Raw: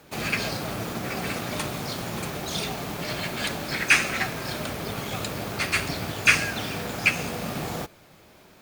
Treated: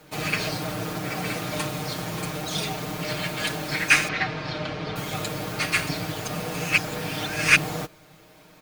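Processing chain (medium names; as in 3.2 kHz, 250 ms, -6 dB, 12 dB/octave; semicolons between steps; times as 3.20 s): 4.08–4.96 s: low-pass 4.8 kHz 24 dB/octave; 6.27–7.56 s: reverse; comb 6.5 ms, depth 75%; trim -1 dB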